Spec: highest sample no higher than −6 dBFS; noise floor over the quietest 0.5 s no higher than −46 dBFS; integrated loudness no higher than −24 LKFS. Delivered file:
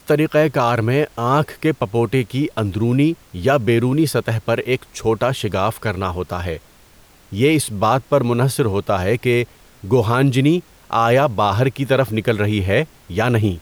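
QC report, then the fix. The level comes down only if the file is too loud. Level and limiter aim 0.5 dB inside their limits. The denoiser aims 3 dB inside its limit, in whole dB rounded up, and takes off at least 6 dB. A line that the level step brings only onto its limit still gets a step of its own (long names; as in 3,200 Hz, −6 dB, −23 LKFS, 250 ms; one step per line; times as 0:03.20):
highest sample −5.5 dBFS: out of spec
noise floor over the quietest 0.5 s −48 dBFS: in spec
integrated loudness −18.5 LKFS: out of spec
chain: level −6 dB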